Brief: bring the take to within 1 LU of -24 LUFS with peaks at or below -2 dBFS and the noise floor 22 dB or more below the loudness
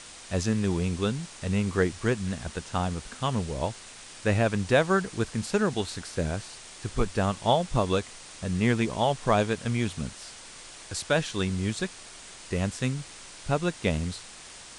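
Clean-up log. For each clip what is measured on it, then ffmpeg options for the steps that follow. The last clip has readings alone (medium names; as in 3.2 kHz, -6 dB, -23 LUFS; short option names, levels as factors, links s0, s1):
noise floor -46 dBFS; noise floor target -51 dBFS; loudness -28.5 LUFS; peak level -9.0 dBFS; loudness target -24.0 LUFS
-> -af "afftdn=nr=6:nf=-46"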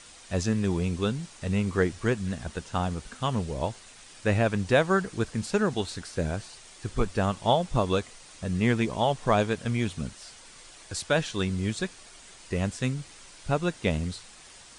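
noise floor -50 dBFS; noise floor target -51 dBFS
-> -af "afftdn=nr=6:nf=-50"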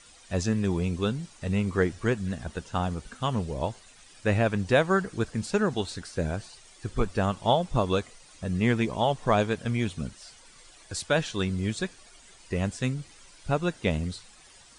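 noise floor -54 dBFS; loudness -28.5 LUFS; peak level -9.0 dBFS; loudness target -24.0 LUFS
-> -af "volume=1.68"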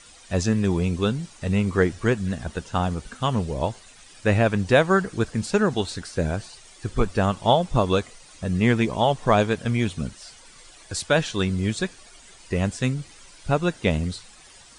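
loudness -24.0 LUFS; peak level -4.5 dBFS; noise floor -49 dBFS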